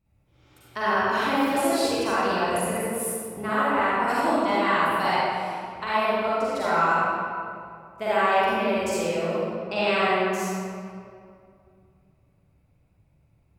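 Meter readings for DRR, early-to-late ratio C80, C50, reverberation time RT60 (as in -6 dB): -10.5 dB, -3.5 dB, -8.5 dB, 2.4 s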